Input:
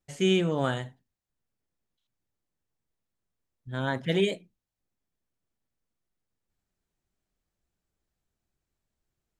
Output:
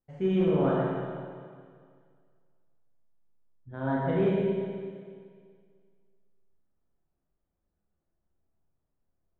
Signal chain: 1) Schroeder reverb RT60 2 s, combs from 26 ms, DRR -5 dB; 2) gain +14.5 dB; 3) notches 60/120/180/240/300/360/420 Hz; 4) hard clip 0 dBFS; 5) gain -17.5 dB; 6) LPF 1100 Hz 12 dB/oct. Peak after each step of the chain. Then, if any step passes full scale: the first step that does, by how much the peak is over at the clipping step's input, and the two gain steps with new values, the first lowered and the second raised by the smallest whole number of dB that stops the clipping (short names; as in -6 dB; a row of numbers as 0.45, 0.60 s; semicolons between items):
-9.0, +5.5, +5.0, 0.0, -17.5, -17.0 dBFS; step 2, 5.0 dB; step 2 +9.5 dB, step 5 -12.5 dB